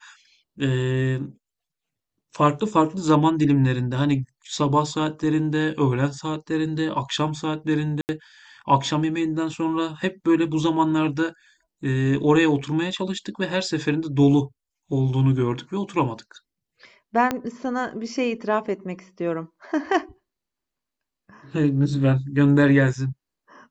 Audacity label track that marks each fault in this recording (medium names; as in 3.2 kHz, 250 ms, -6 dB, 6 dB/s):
8.010000	8.090000	dropout 79 ms
17.310000	17.310000	pop -9 dBFS